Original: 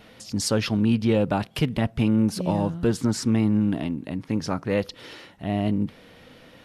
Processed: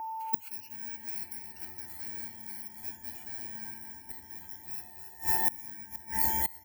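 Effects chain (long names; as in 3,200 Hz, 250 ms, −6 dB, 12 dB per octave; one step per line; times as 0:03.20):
samples in bit-reversed order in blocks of 64 samples
delay with pitch and tempo change per echo 529 ms, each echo −4 semitones, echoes 3, each echo −6 dB
octave-band graphic EQ 125/250/500/1,000/4,000/8,000 Hz −8/−8/−9/−5/+10/−11 dB
spring reverb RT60 3.8 s, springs 33/55 ms, chirp 25 ms, DRR 2.5 dB
noise reduction from a noise print of the clip's start 18 dB
high-pass filter 78 Hz 12 dB per octave
repeating echo 280 ms, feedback 53%, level −9 dB
steady tone 890 Hz −37 dBFS
gate with flip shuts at −21 dBFS, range −25 dB
high-shelf EQ 4,700 Hz +6.5 dB
phaser with its sweep stopped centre 750 Hz, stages 8
level +4.5 dB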